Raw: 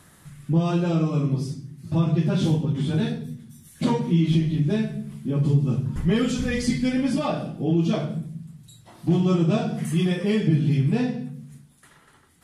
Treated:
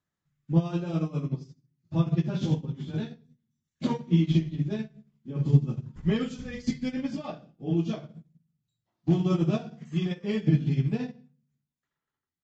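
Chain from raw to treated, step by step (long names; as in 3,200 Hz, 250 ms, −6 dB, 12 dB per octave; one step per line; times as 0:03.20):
downsampling to 16,000 Hz
expander for the loud parts 2.5 to 1, over −38 dBFS
level +2 dB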